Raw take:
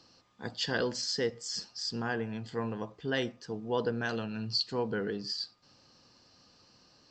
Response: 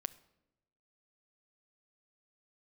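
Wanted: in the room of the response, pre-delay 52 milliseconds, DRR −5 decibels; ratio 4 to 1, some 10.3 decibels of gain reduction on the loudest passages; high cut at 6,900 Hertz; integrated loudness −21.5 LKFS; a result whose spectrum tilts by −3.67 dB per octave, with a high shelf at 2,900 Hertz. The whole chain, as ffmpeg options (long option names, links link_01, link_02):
-filter_complex "[0:a]lowpass=6900,highshelf=frequency=2900:gain=4.5,acompressor=threshold=-38dB:ratio=4,asplit=2[link_01][link_02];[1:a]atrim=start_sample=2205,adelay=52[link_03];[link_02][link_03]afir=irnorm=-1:irlink=0,volume=7dB[link_04];[link_01][link_04]amix=inputs=2:normalize=0,volume=12.5dB"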